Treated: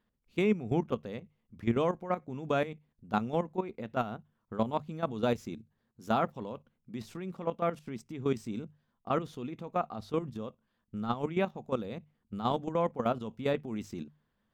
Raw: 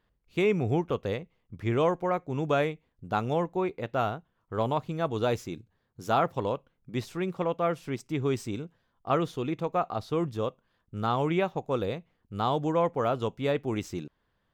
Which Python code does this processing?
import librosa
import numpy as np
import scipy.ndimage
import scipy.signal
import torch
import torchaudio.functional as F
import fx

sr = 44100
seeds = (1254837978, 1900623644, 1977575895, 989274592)

y = fx.level_steps(x, sr, step_db=13)
y = fx.peak_eq(y, sr, hz=220.0, db=11.0, octaves=0.38)
y = fx.hum_notches(y, sr, base_hz=50, count=3)
y = y * 10.0 ** (-1.5 / 20.0)